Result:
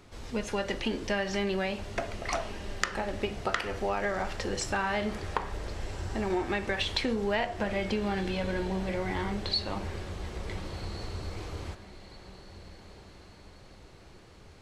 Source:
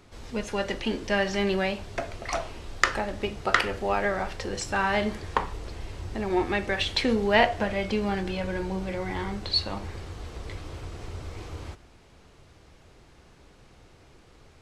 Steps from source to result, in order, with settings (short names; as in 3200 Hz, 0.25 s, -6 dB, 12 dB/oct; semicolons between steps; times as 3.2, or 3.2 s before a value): compressor 6:1, threshold -26 dBFS, peak gain reduction 11.5 dB; on a send: diffused feedback echo 1.486 s, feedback 44%, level -15 dB